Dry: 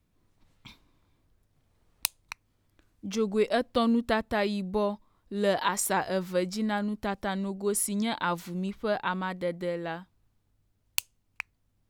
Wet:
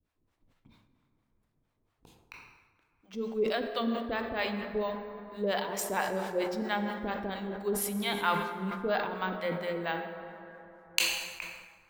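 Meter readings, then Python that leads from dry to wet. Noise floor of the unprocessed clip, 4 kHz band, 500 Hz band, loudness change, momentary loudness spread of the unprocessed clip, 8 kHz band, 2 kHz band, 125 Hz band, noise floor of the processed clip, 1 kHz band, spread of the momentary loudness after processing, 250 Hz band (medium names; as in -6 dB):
-73 dBFS, +1.5 dB, -3.0 dB, -3.0 dB, 15 LU, -4.5 dB, 0.0 dB, -5.0 dB, -77 dBFS, -2.0 dB, 15 LU, -5.5 dB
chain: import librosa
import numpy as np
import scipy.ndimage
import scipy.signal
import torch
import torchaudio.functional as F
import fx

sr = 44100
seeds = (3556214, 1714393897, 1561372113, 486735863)

y = fx.hum_notches(x, sr, base_hz=60, count=4)
y = np.repeat(y[::2], 2)[:len(y)]
y = fx.dynamic_eq(y, sr, hz=3300.0, q=0.82, threshold_db=-46.0, ratio=4.0, max_db=6)
y = fx.harmonic_tremolo(y, sr, hz=4.4, depth_pct=100, crossover_hz=570.0)
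y = fx.bass_treble(y, sr, bass_db=-4, treble_db=-7)
y = fx.rider(y, sr, range_db=10, speed_s=2.0)
y = fx.rev_plate(y, sr, seeds[0], rt60_s=3.8, hf_ratio=0.4, predelay_ms=0, drr_db=5.5)
y = fx.sustainer(y, sr, db_per_s=59.0)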